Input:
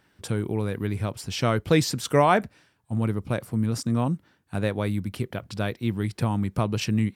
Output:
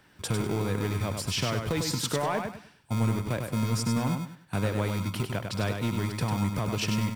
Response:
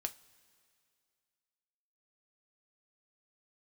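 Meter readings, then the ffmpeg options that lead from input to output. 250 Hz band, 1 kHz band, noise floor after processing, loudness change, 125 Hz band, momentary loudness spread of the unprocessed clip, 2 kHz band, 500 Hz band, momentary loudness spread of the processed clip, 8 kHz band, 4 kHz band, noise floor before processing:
−3.5 dB, −6.0 dB, −58 dBFS, −3.0 dB, −2.0 dB, 10 LU, −3.0 dB, −5.5 dB, 5 LU, +1.5 dB, +0.5 dB, −66 dBFS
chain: -filter_complex "[0:a]acrossover=split=280[link_01][link_02];[link_01]acrusher=samples=38:mix=1:aa=0.000001[link_03];[link_03][link_02]amix=inputs=2:normalize=0,alimiter=limit=-17dB:level=0:latency=1:release=331,asoftclip=type=tanh:threshold=-20.5dB,acompressor=threshold=-32dB:ratio=2,aecho=1:1:99|198|297|396:0.531|0.143|0.0387|0.0104,volume=4dB"

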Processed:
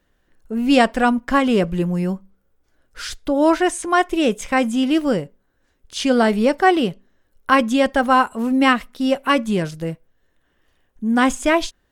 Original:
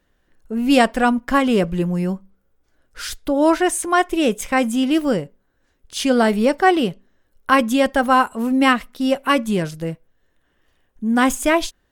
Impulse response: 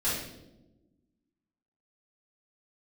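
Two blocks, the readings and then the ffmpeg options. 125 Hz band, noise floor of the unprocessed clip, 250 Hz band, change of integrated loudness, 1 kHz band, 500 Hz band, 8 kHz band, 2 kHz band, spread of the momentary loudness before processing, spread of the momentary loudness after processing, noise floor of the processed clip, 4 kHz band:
0.0 dB, −66 dBFS, 0.0 dB, 0.0 dB, 0.0 dB, 0.0 dB, −3.5 dB, 0.0 dB, 12 LU, 13 LU, −66 dBFS, 0.0 dB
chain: -filter_complex "[0:a]acrossover=split=8700[link_01][link_02];[link_02]acompressor=threshold=-50dB:ratio=4:attack=1:release=60[link_03];[link_01][link_03]amix=inputs=2:normalize=0"

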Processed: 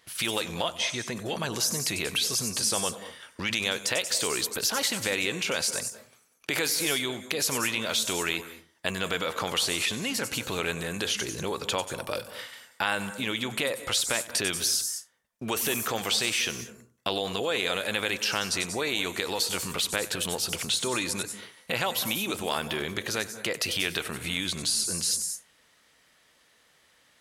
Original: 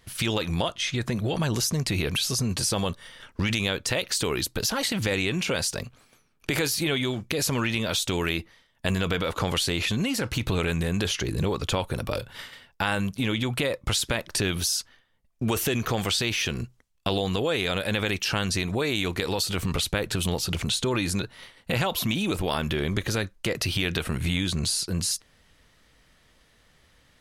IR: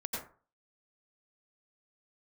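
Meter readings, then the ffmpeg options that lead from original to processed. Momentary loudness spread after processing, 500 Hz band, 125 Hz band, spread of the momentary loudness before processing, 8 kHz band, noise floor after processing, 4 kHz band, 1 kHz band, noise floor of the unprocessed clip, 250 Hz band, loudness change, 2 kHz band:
8 LU, −3.0 dB, −12.0 dB, 5 LU, +2.5 dB, −63 dBFS, 0.0 dB, −1.0 dB, −62 dBFS, −7.0 dB, −1.5 dB, 0.0 dB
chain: -filter_complex "[0:a]highpass=frequency=520:poles=1,asplit=2[link_01][link_02];[link_02]highshelf=frequency=5200:width_type=q:width=1.5:gain=12[link_03];[1:a]atrim=start_sample=2205,adelay=95[link_04];[link_03][link_04]afir=irnorm=-1:irlink=0,volume=-15dB[link_05];[link_01][link_05]amix=inputs=2:normalize=0"

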